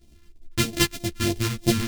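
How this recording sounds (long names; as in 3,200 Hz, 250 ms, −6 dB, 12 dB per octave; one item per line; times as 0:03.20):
a buzz of ramps at a fixed pitch in blocks of 128 samples
phaser sweep stages 2, 3.2 Hz, lowest notch 600–1,300 Hz
tremolo saw up 6.1 Hz, depth 35%
a shimmering, thickened sound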